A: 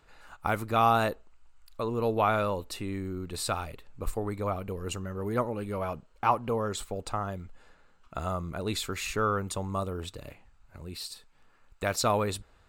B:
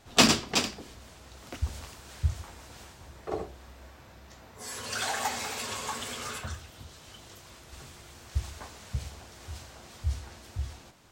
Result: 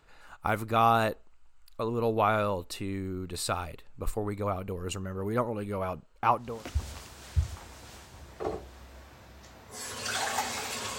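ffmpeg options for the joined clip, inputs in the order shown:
ffmpeg -i cue0.wav -i cue1.wav -filter_complex "[0:a]apad=whole_dur=10.98,atrim=end=10.98,atrim=end=6.65,asetpts=PTS-STARTPTS[link_01];[1:a]atrim=start=1.18:end=5.85,asetpts=PTS-STARTPTS[link_02];[link_01][link_02]acrossfade=duration=0.34:curve1=tri:curve2=tri" out.wav

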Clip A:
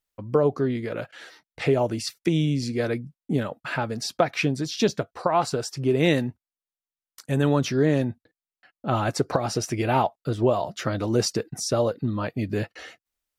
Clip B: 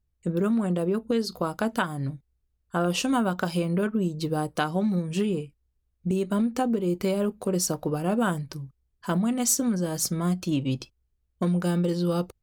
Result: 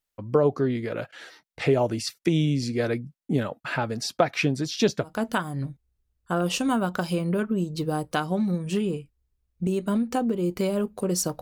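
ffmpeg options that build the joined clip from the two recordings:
ffmpeg -i cue0.wav -i cue1.wav -filter_complex "[0:a]apad=whole_dur=11.41,atrim=end=11.41,atrim=end=5.22,asetpts=PTS-STARTPTS[link_01];[1:a]atrim=start=1.46:end=7.85,asetpts=PTS-STARTPTS[link_02];[link_01][link_02]acrossfade=duration=0.2:curve1=tri:curve2=tri" out.wav

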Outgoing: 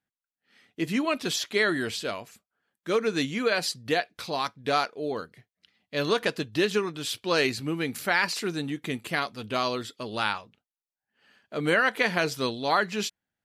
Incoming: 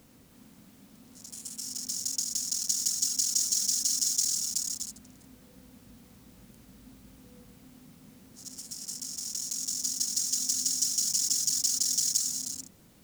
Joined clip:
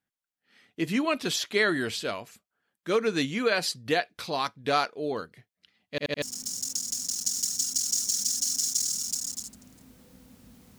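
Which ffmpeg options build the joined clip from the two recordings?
ffmpeg -i cue0.wav -i cue1.wav -filter_complex "[0:a]apad=whole_dur=10.78,atrim=end=10.78,asplit=4[link_01][link_02][link_03][link_04];[link_01]atrim=end=5.982[link_05];[link_02]atrim=start=5.898:end=5.982[link_06];[link_03]atrim=start=5.898:end=5.982[link_07];[link_04]atrim=start=5.898:end=5.982[link_08];[1:a]atrim=start=1.648:end=6.21[link_09];[link_05][link_06]acrossfade=duration=0.004:curve1=hsin:curve2=hsin[link_10];[link_10][link_07]acrossfade=duration=0.004:curve1=hsin:curve2=hsin[link_11];[link_11][link_08]acrossfade=duration=0.004:curve1=hsin:curve2=hsin[link_12];[link_12][link_09]acrossfade=duration=0.004:curve1=hsin:curve2=hsin" out.wav

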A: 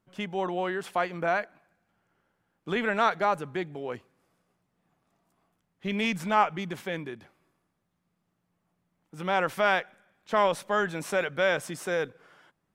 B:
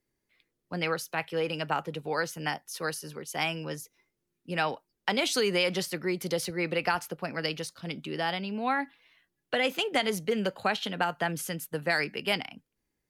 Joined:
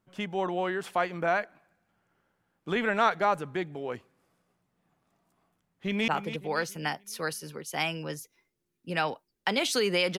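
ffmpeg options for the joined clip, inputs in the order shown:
ffmpeg -i cue0.wav -i cue1.wav -filter_complex "[0:a]apad=whole_dur=10.18,atrim=end=10.18,atrim=end=6.082[link_01];[1:a]atrim=start=1.688:end=5.79[link_02];[link_01][link_02]acrossfade=duration=0.004:curve1=hsin:curve2=hsin,asplit=2[link_03][link_04];[link_04]afade=type=in:start_time=5.66:duration=0.01,afade=type=out:start_time=6.08:duration=0.01,aecho=0:1:280|560|840|1120|1400:0.266073|0.119733|0.0538797|0.0242459|0.0109106[link_05];[link_03][link_05]amix=inputs=2:normalize=0" out.wav

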